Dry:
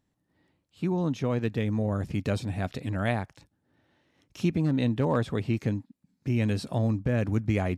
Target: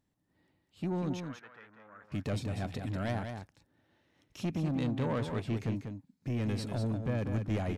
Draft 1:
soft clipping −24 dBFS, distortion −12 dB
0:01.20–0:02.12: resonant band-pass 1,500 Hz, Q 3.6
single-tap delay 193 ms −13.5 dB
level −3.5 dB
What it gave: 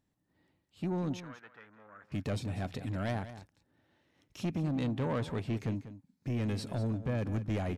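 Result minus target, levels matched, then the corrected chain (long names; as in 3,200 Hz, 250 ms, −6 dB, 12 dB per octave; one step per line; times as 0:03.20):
echo-to-direct −6.5 dB
soft clipping −24 dBFS, distortion −12 dB
0:01.20–0:02.12: resonant band-pass 1,500 Hz, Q 3.6
single-tap delay 193 ms −7 dB
level −3.5 dB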